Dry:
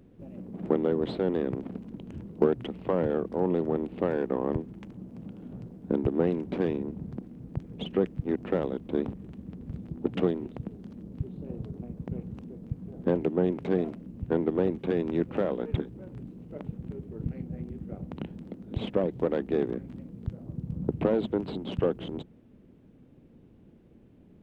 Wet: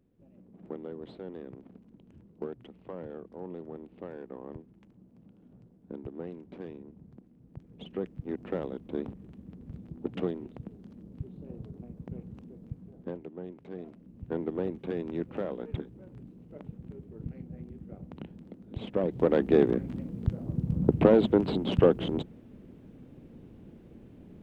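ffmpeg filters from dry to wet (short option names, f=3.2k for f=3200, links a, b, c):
-af "volume=16dB,afade=t=in:st=7.39:d=1.12:silence=0.354813,afade=t=out:st=12.68:d=0.54:silence=0.298538,afade=t=in:st=13.72:d=0.69:silence=0.316228,afade=t=in:st=18.87:d=0.6:silence=0.266073"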